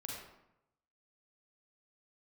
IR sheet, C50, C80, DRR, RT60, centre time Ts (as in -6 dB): -0.5 dB, 3.0 dB, -2.5 dB, 0.85 s, 65 ms